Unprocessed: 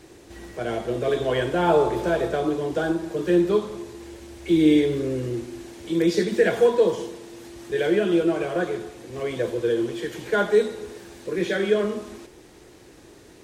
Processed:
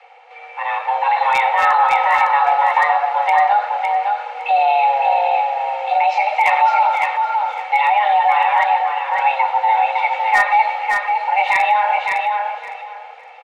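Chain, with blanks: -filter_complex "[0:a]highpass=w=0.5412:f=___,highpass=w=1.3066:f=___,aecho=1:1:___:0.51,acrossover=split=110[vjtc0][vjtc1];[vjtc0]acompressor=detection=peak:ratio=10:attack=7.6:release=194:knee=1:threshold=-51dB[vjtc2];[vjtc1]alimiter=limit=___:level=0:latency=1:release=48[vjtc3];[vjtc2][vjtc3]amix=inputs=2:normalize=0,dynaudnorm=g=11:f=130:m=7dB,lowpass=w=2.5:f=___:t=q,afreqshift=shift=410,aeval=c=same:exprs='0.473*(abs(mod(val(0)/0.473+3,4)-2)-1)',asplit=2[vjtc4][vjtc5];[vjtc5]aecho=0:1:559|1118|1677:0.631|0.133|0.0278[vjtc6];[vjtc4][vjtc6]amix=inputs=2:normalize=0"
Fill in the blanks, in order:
51, 51, 2.2, -15.5dB, 2000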